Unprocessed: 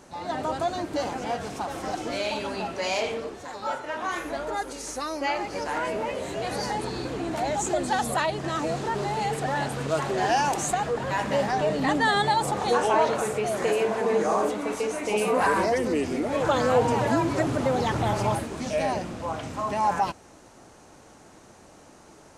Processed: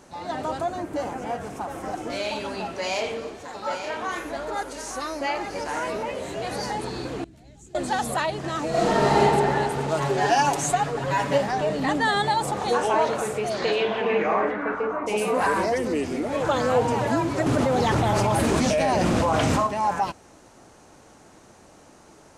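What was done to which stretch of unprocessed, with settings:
0.61–2.1 bell 4200 Hz -9.5 dB 1.2 oct
2.66–6.03 tapped delay 0.315/0.883 s -20/-8.5 dB
7.24–7.75 passive tone stack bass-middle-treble 10-0-1
8.69–9.18 reverb throw, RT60 2.9 s, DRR -10.5 dB
10–11.38 comb 7.1 ms, depth 86%
13.49–15.06 synth low-pass 4900 Hz -> 1100 Hz
17.46–19.67 fast leveller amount 100%

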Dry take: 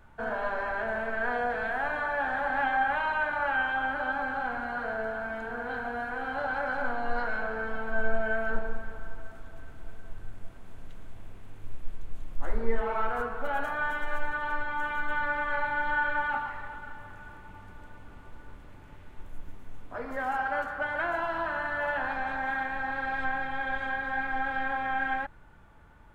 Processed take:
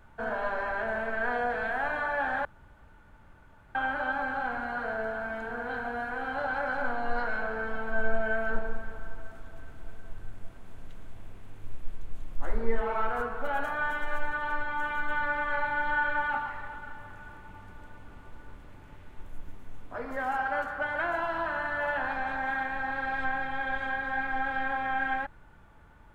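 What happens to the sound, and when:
2.45–3.75 room tone

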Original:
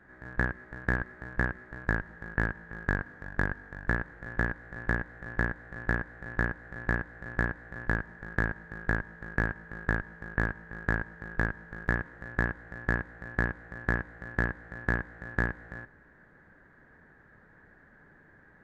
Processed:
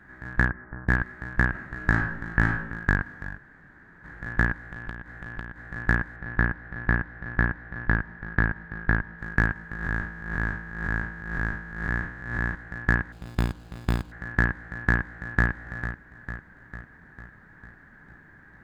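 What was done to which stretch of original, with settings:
0.48–0.88 LPF 2000 Hz -> 1300 Hz 24 dB/oct
1.49–2.53 reverb throw, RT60 0.81 s, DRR 2.5 dB
3.38–4.04 room tone
4.58–5.62 compressor, threshold -38 dBFS
6.16–9.19 air absorption 170 m
9.76–12.55 time blur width 0.173 s
13.12–14.12 median filter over 25 samples
14.94–15.49 echo throw 0.45 s, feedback 60%, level -10 dB
whole clip: bell 510 Hz -9 dB 1 oct; gain +7 dB

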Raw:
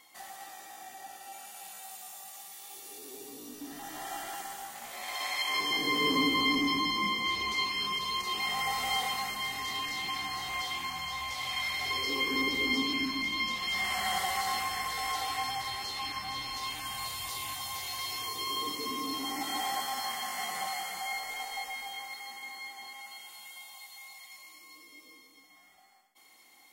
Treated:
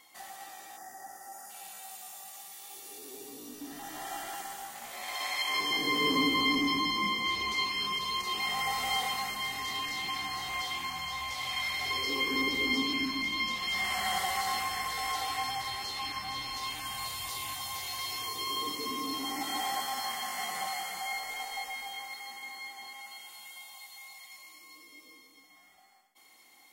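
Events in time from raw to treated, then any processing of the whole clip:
0.77–1.5 spectral gain 2100–4700 Hz -19 dB

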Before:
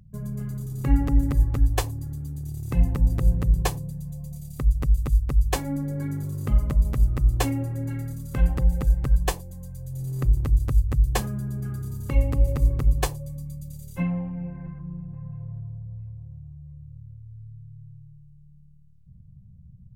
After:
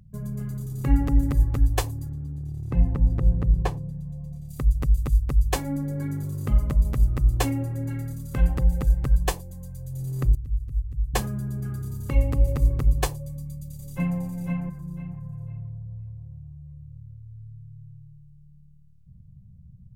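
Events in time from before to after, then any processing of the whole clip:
2.09–4.49 LPF 1400 Hz 6 dB/oct
10.35–11.14 passive tone stack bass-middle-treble 10-0-1
13.29–14.19 echo throw 0.5 s, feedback 25%, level -4 dB

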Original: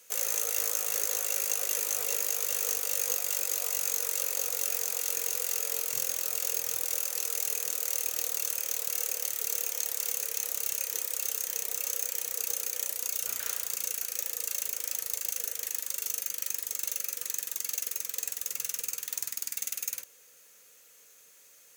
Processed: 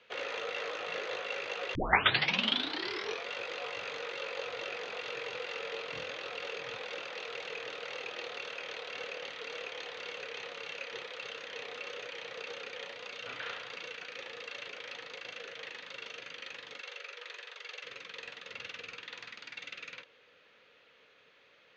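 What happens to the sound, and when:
1.75 tape start 1.53 s
16.81–17.84 elliptic high-pass 390 Hz, stop band 50 dB
whole clip: steep low-pass 3700 Hz 36 dB/oct; gain +4 dB

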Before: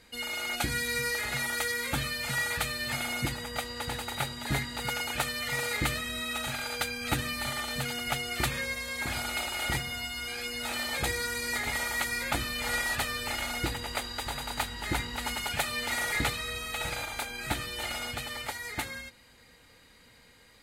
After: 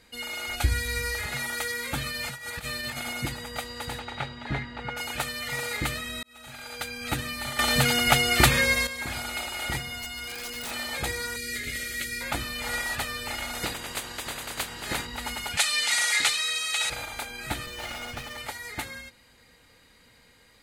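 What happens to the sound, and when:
0.47–1.26 resonant low shelf 110 Hz +10.5 dB, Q 3
2.06–3.16 negative-ratio compressor -34 dBFS, ratio -0.5
3.98–4.96 LPF 4400 Hz -> 2100 Hz
6.23–7.04 fade in
7.59–8.87 gain +11 dB
10–10.71 wrapped overs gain 28 dB
11.36–12.21 Butterworth band-stop 910 Hz, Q 0.73
13.53–15.05 spectral limiter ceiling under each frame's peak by 15 dB
15.57–16.9 weighting filter ITU-R 468
17.66–18.38 running maximum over 5 samples

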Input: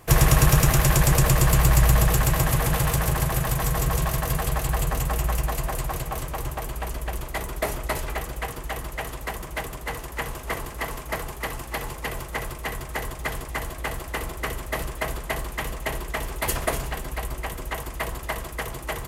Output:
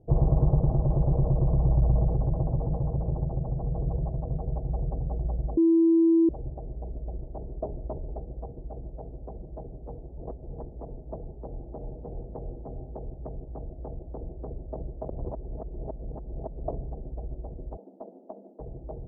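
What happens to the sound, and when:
5.57–6.29 bleep 330 Hz -12 dBFS
10.18–10.63 reverse
11.44–12.71 reverb throw, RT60 1.5 s, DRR 4.5 dB
15.09–16.68 reverse
17.77–18.6 rippled Chebyshev high-pass 190 Hz, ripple 3 dB
whole clip: Wiener smoothing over 41 samples; steep low-pass 800 Hz 36 dB/oct; gain -4 dB

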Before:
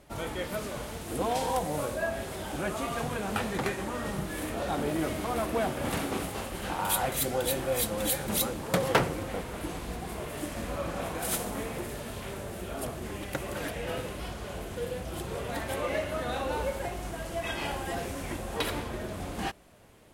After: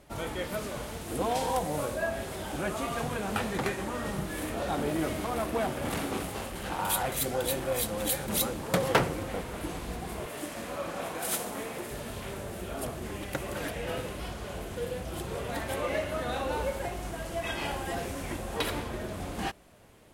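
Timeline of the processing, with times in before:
5.26–8.34 core saturation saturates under 560 Hz
10.26–11.91 HPF 270 Hz 6 dB/oct

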